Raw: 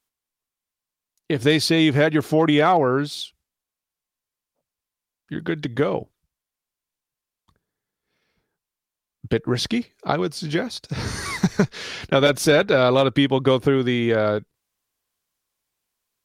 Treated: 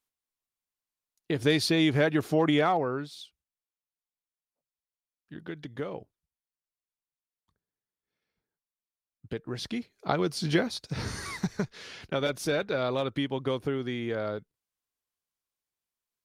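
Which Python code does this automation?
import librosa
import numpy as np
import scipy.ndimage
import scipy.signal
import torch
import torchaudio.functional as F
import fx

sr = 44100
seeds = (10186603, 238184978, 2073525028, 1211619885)

y = fx.gain(x, sr, db=fx.line((2.56, -6.5), (3.13, -14.0), (9.49, -14.0), (10.47, -1.0), (11.59, -12.0)))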